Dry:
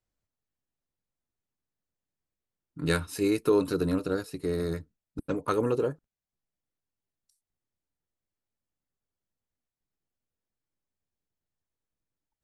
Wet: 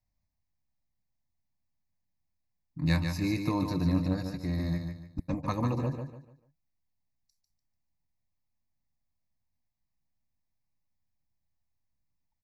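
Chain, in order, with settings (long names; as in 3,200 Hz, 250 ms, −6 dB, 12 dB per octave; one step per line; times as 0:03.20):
low-shelf EQ 380 Hz +6.5 dB
phaser with its sweep stopped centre 2,100 Hz, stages 8
repeating echo 147 ms, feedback 32%, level −6 dB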